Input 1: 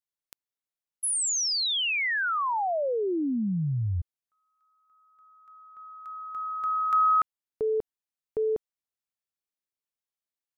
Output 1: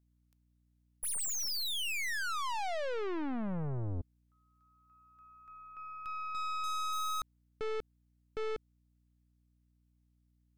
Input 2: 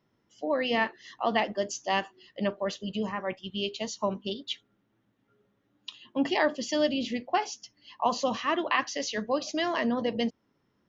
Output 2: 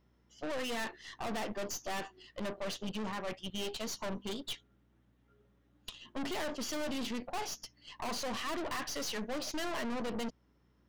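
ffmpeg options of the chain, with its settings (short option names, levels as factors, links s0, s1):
-af "aeval=exprs='(tanh(89.1*val(0)+0.75)-tanh(0.75))/89.1':c=same,aeval=exprs='val(0)+0.0002*(sin(2*PI*60*n/s)+sin(2*PI*2*60*n/s)/2+sin(2*PI*3*60*n/s)/3+sin(2*PI*4*60*n/s)/4+sin(2*PI*5*60*n/s)/5)':c=same,volume=1.5"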